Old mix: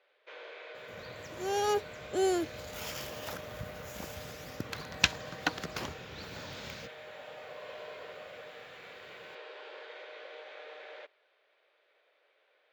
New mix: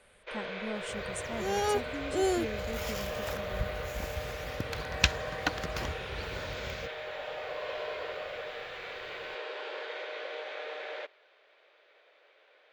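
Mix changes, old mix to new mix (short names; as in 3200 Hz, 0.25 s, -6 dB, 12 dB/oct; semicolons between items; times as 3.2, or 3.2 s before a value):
speech: unmuted; first sound +8.0 dB; master: remove HPF 140 Hz 12 dB/oct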